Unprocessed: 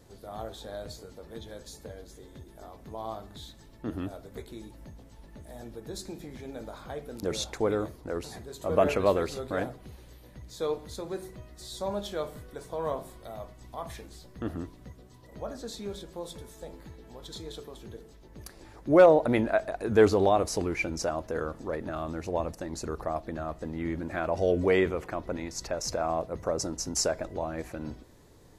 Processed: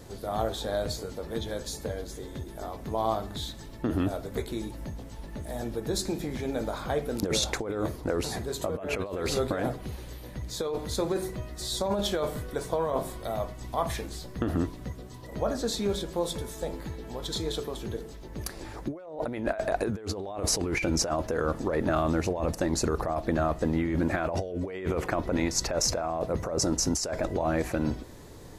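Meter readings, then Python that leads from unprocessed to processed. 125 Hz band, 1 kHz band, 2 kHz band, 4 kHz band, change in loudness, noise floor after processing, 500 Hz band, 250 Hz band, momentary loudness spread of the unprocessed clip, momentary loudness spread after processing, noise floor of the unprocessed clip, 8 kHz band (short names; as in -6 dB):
+5.0 dB, +0.5 dB, +0.5 dB, +6.5 dB, -1.0 dB, -43 dBFS, -2.0 dB, +2.5 dB, 22 LU, 11 LU, -53 dBFS, +6.0 dB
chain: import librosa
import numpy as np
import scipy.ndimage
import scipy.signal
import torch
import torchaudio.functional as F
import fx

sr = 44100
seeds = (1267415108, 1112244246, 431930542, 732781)

y = fx.over_compress(x, sr, threshold_db=-34.0, ratio=-1.0)
y = y * librosa.db_to_amplitude(5.0)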